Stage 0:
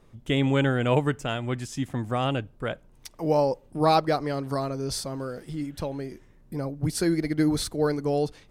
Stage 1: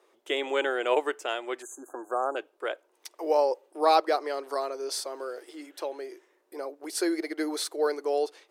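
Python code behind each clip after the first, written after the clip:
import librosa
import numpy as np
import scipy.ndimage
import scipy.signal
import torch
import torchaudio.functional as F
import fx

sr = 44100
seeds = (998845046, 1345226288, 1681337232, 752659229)

y = fx.spec_erase(x, sr, start_s=1.62, length_s=0.74, low_hz=1700.0, high_hz=6200.0)
y = scipy.signal.sosfilt(scipy.signal.ellip(4, 1.0, 50, 350.0, 'highpass', fs=sr, output='sos'), y)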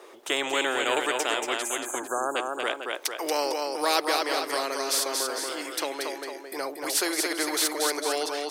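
y = fx.echo_multitap(x, sr, ms=(232, 452), db=(-6.5, -15.0))
y = fx.spectral_comp(y, sr, ratio=2.0)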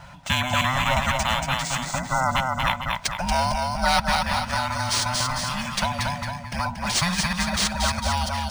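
y = fx.band_invert(x, sr, width_hz=500)
y = fx.rider(y, sr, range_db=4, speed_s=2.0)
y = np.interp(np.arange(len(y)), np.arange(len(y))[::3], y[::3])
y = y * librosa.db_to_amplitude(4.5)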